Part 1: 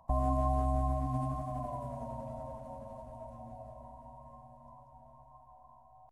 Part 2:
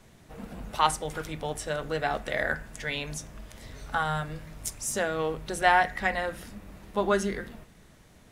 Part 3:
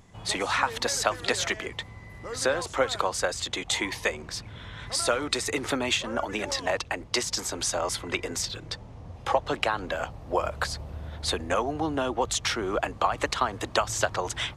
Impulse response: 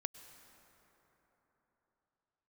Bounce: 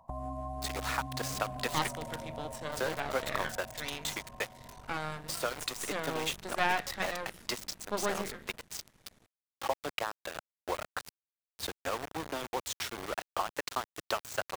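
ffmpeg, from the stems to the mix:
-filter_complex "[0:a]acompressor=threshold=-39dB:ratio=2.5,volume=0.5dB[link_01];[1:a]aeval=exprs='max(val(0),0)':channel_layout=same,adelay=950,volume=-4.5dB[link_02];[2:a]acompressor=mode=upward:threshold=-39dB:ratio=2.5,aeval=exprs='val(0)*gte(abs(val(0)),0.0562)':channel_layout=same,adelay=350,volume=-8dB[link_03];[link_01][link_02][link_03]amix=inputs=3:normalize=0,lowshelf=frequency=70:gain=-6.5"

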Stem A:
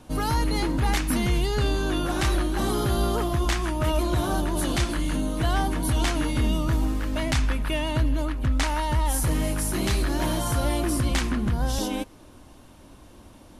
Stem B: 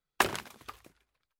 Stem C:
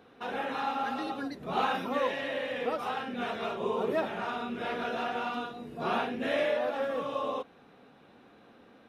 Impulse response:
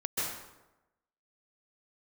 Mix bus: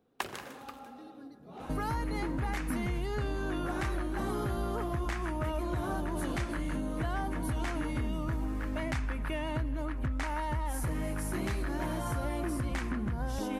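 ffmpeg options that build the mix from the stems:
-filter_complex "[0:a]highpass=41,highshelf=frequency=2600:width_type=q:width=1.5:gain=-6.5,adelay=1600,volume=2.5dB[link_01];[1:a]volume=-3.5dB,asplit=2[link_02][link_03];[link_03]volume=-19.5dB[link_04];[2:a]equalizer=frequency=2100:width=0.38:gain=-13,asoftclip=type=hard:threshold=-30dB,volume=-12dB,asplit=2[link_05][link_06];[link_06]volume=-12.5dB[link_07];[3:a]atrim=start_sample=2205[link_08];[link_04][link_07]amix=inputs=2:normalize=0[link_09];[link_09][link_08]afir=irnorm=-1:irlink=0[link_10];[link_01][link_02][link_05][link_10]amix=inputs=4:normalize=0,acompressor=threshold=-34dB:ratio=3"

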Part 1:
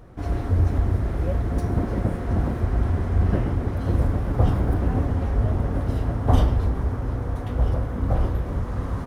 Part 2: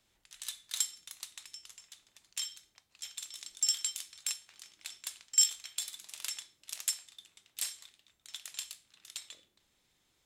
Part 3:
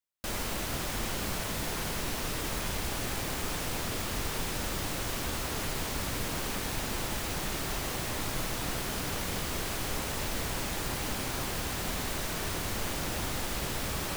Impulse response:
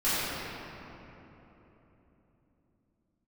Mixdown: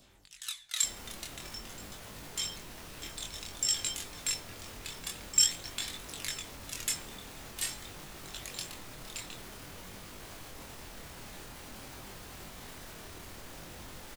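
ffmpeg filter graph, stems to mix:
-filter_complex "[1:a]adynamicequalizer=threshold=0.00158:dfrequency=1800:dqfactor=0.93:tfrequency=1800:tqfactor=0.93:attack=5:release=100:ratio=0.375:range=3.5:mode=boostabove:tftype=bell,aphaser=in_gain=1:out_gain=1:delay=3:decay=0.54:speed=0.34:type=sinusoidal,volume=2dB[link_01];[2:a]alimiter=level_in=4.5dB:limit=-24dB:level=0:latency=1:release=36,volume=-4.5dB,adelay=600,volume=-6dB[link_02];[link_01][link_02]amix=inputs=2:normalize=0,acompressor=mode=upward:threshold=-49dB:ratio=2.5,flanger=delay=20:depth=6.7:speed=0.49"

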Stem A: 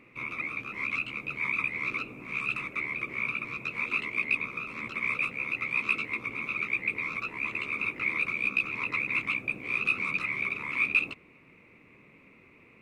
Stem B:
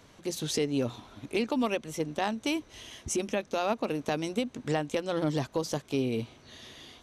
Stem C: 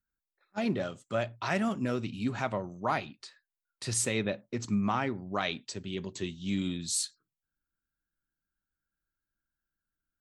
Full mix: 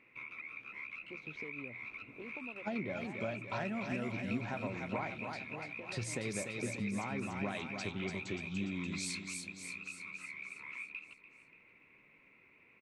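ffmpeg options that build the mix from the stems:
ffmpeg -i stem1.wav -i stem2.wav -i stem3.wav -filter_complex "[0:a]acompressor=threshold=-38dB:ratio=6,equalizer=frequency=1800:width_type=o:width=3:gain=9.5,volume=-14.5dB,asplit=2[link_01][link_02];[link_02]volume=-15dB[link_03];[1:a]lowpass=3200,acompressor=threshold=-30dB:ratio=6,adelay=850,volume=-15dB[link_04];[2:a]adelay=2100,volume=1dB,asplit=2[link_05][link_06];[link_06]volume=-15.5dB[link_07];[link_04][link_05]amix=inputs=2:normalize=0,aemphasis=mode=reproduction:type=75kf,acompressor=threshold=-36dB:ratio=6,volume=0dB[link_08];[link_03][link_07]amix=inputs=2:normalize=0,aecho=0:1:291|582|873|1164|1455|1746|2037|2328:1|0.56|0.314|0.176|0.0983|0.0551|0.0308|0.0173[link_09];[link_01][link_08][link_09]amix=inputs=3:normalize=0,bandreject=frequency=1200:width=8.2" out.wav

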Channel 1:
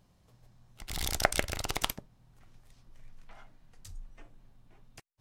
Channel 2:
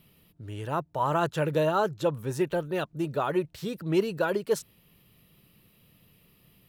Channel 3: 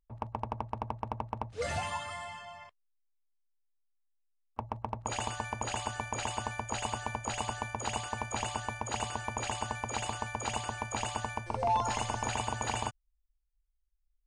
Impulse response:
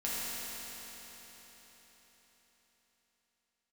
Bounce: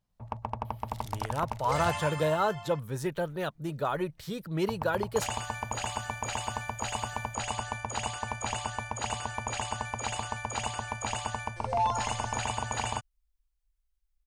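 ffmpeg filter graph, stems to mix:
-filter_complex "[0:a]volume=-15dB[link_01];[1:a]bandreject=frequency=2700:width=12,adelay=650,volume=-1dB[link_02];[2:a]adelay=100,volume=2dB[link_03];[link_01][link_02][link_03]amix=inputs=3:normalize=0,equalizer=frequency=340:width_type=o:width=0.87:gain=-5.5"

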